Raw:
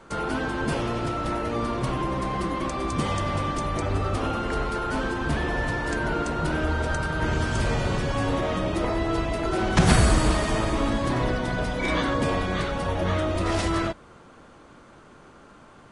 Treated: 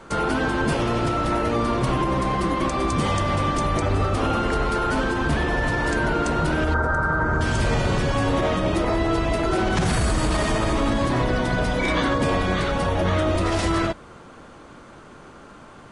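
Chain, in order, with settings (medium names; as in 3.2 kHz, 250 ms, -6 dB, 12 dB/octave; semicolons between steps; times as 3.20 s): 6.74–7.41 s: resonant high shelf 2 kHz -12 dB, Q 3; peak limiter -18.5 dBFS, peak gain reduction 12 dB; trim +5.5 dB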